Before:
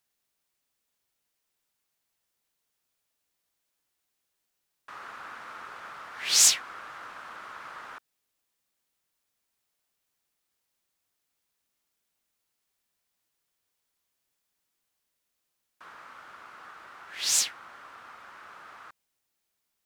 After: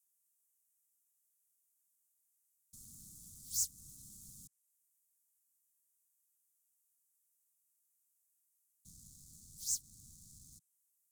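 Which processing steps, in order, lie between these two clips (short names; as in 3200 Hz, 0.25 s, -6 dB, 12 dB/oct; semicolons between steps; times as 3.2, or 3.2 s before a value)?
spectral gate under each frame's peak -25 dB strong; treble ducked by the level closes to 2700 Hz, closed at -33 dBFS; HPF 190 Hz 12 dB/oct; spectral delete 0.76–1.99, 750–5000 Hz; time stretch by phase-locked vocoder 0.56×; tone controls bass -6 dB, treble +8 dB; sample leveller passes 3; compressor 5:1, threshold -30 dBFS, peak gain reduction 8.5 dB; inverse Chebyshev band-stop 490–2700 Hz, stop band 60 dB; gain +5 dB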